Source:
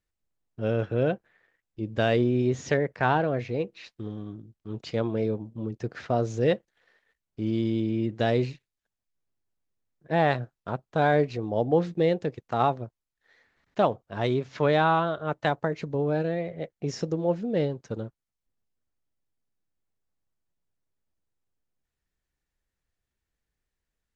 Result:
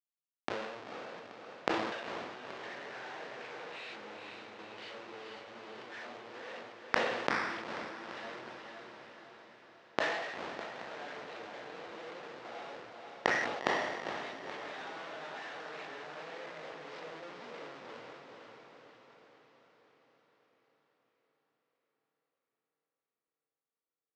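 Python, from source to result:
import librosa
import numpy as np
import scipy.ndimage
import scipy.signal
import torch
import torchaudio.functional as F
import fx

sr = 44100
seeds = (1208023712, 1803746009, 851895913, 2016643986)

p1 = fx.phase_scramble(x, sr, seeds[0], window_ms=200)
p2 = fx.recorder_agc(p1, sr, target_db=-13.0, rise_db_per_s=66.0, max_gain_db=30)
p3 = fx.env_lowpass(p2, sr, base_hz=820.0, full_db=-19.5)
p4 = fx.band_shelf(p3, sr, hz=2700.0, db=14.0, octaves=1.7)
p5 = fx.schmitt(p4, sr, flips_db=-22.0)
p6 = fx.gate_flip(p5, sr, shuts_db=-24.0, range_db=-33)
p7 = fx.bandpass_edges(p6, sr, low_hz=480.0, high_hz=6500.0)
p8 = fx.air_absorb(p7, sr, metres=140.0)
p9 = p8 + fx.echo_diffused(p8, sr, ms=476, feedback_pct=58, wet_db=-4.0, dry=0)
p10 = fx.sustainer(p9, sr, db_per_s=40.0)
y = F.gain(torch.from_numpy(p10), 11.0).numpy()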